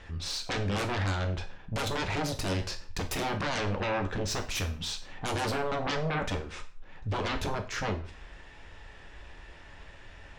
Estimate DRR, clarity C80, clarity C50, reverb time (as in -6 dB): 5.5 dB, 17.5 dB, 12.5 dB, 0.45 s